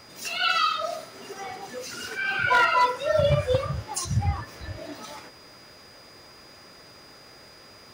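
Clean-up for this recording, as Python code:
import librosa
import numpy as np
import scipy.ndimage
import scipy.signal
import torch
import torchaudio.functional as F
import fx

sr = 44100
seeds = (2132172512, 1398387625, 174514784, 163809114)

y = fx.fix_declip(x, sr, threshold_db=-14.0)
y = fx.notch(y, sr, hz=4900.0, q=30.0)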